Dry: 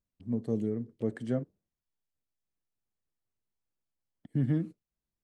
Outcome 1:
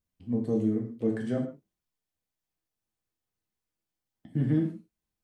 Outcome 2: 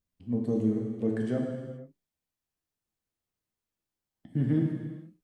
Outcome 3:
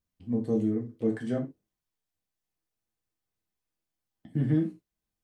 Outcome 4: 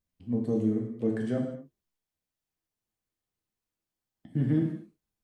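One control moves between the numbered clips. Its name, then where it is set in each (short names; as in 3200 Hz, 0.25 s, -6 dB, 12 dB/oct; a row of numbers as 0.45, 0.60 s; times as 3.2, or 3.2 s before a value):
non-linear reverb, gate: 0.18, 0.5, 0.11, 0.27 s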